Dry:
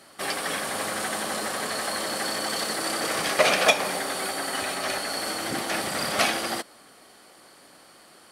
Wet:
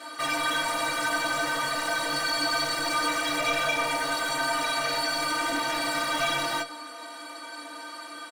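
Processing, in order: comb 3.4 ms, depth 95%; overdrive pedal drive 34 dB, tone 2.2 kHz, clips at -1.5 dBFS; in parallel at -11 dB: hard clipper -20 dBFS, distortion -7 dB; on the sum: inharmonic resonator 140 Hz, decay 0.29 s, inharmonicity 0.03; trim -5.5 dB

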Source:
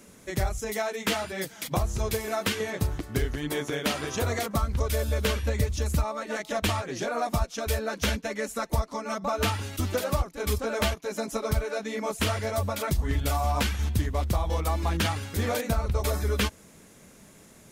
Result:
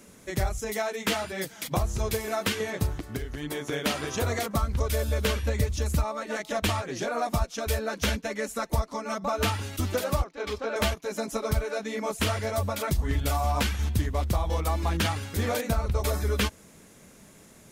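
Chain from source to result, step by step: 2.91–3.69 s: compression 10:1, threshold -29 dBFS, peak gain reduction 9 dB; 10.24–10.76 s: three-band isolator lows -14 dB, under 260 Hz, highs -23 dB, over 5.4 kHz

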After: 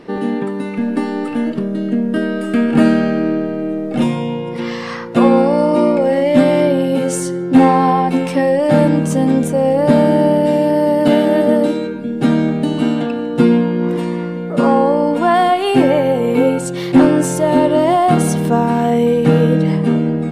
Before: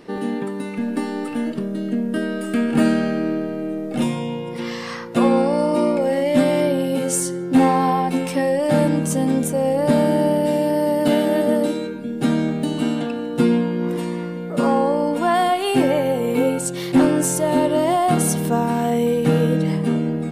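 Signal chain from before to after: low-pass 3.4 kHz 6 dB/octave; trim +5.5 dB

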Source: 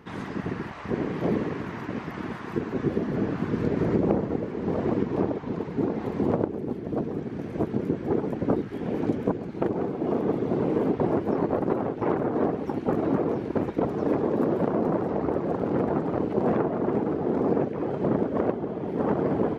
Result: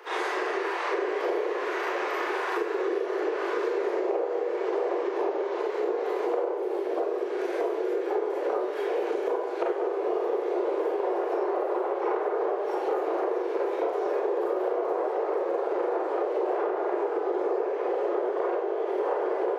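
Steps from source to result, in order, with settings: steep high-pass 360 Hz 72 dB/octave; Schroeder reverb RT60 0.61 s, combs from 31 ms, DRR -6.5 dB; compression 6:1, threshold -32 dBFS, peak gain reduction 16 dB; trim +6.5 dB

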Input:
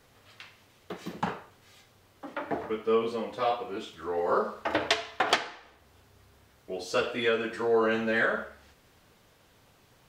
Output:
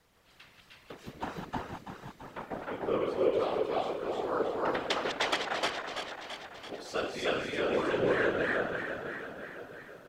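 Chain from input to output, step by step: backward echo that repeats 167 ms, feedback 79%, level -7 dB; multi-tap echo 305/316 ms -3.5/-3 dB; whisper effect; trim -7 dB

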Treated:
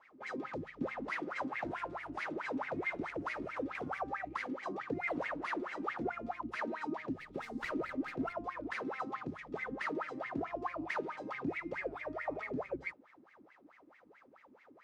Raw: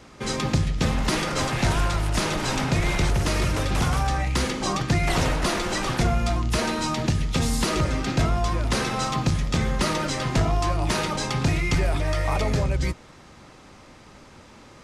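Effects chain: wah-wah 4.6 Hz 260–2200 Hz, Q 11; 7.19–8.33 s: sliding maximum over 3 samples; trim +1 dB

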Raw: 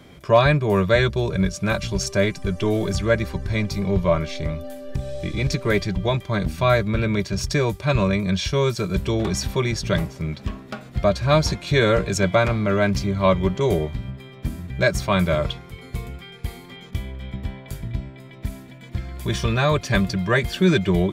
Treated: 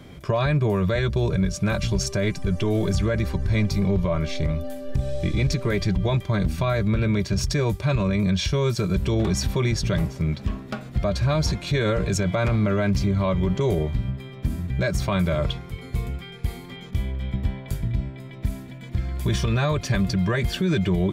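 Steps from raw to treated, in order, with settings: bass shelf 230 Hz +6 dB; peak limiter -14.5 dBFS, peak gain reduction 11 dB

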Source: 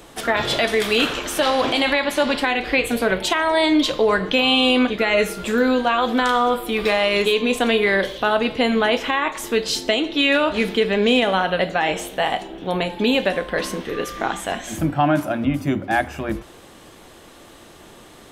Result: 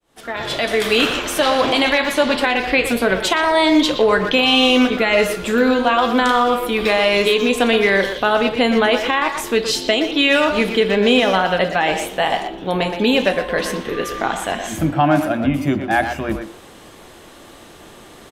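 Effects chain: fade-in on the opening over 0.92 s; speakerphone echo 120 ms, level -6 dB; trim +2.5 dB

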